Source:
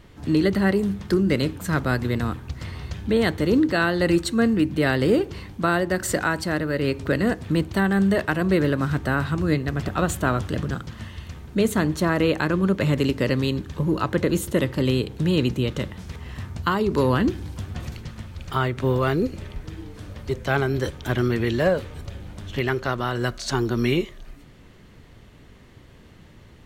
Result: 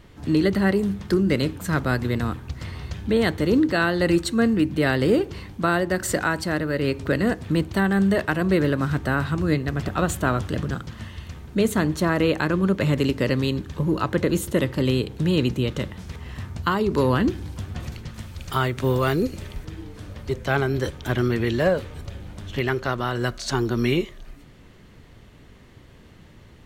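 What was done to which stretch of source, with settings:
0:18.14–0:19.65: high-shelf EQ 4,800 Hz +9 dB

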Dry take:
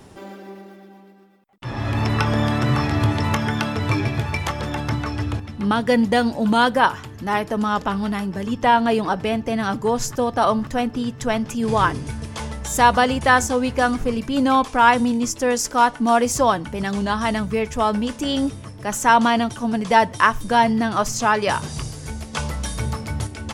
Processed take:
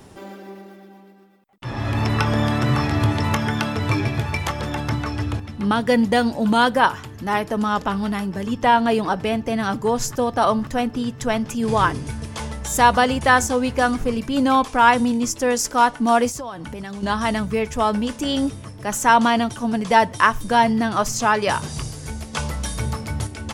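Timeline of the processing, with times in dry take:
0:16.29–0:17.03: downward compressor 8 to 1, threshold −28 dBFS
whole clip: high-shelf EQ 11,000 Hz +3.5 dB

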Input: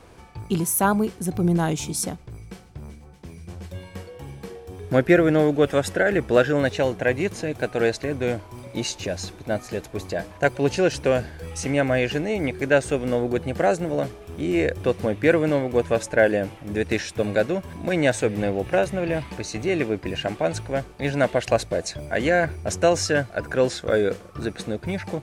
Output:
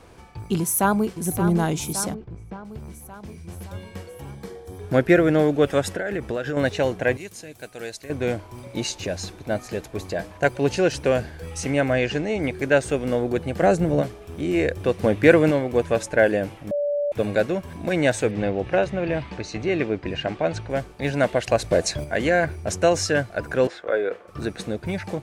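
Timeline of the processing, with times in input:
0:00.59–0:01.10: delay throw 570 ms, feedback 60%, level −9 dB
0:02.14–0:02.65: head-to-tape spacing loss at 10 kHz 29 dB
0:04.31–0:04.81: notch filter 2,700 Hz, Q 5.7
0:05.92–0:06.57: downward compressor 12 to 1, threshold −22 dBFS
0:07.17–0:08.10: first-order pre-emphasis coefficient 0.8
0:11.93–0:12.43: low-pass filter 8,300 Hz 24 dB per octave
0:13.62–0:14.02: low-shelf EQ 250 Hz +11 dB
0:15.04–0:15.51: clip gain +4 dB
0:16.71–0:17.12: beep over 580 Hz −20.5 dBFS
0:18.31–0:20.70: low-pass filter 4,900 Hz
0:21.64–0:22.04: clip gain +5.5 dB
0:23.67–0:24.28: three-way crossover with the lows and the highs turned down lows −21 dB, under 350 Hz, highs −19 dB, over 2,900 Hz

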